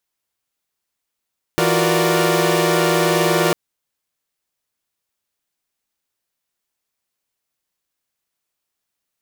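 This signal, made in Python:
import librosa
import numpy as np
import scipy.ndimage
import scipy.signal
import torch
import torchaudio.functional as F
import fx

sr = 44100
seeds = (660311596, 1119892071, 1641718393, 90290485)

y = fx.chord(sr, length_s=1.95, notes=(52, 65, 66, 70, 74), wave='saw', level_db=-18.5)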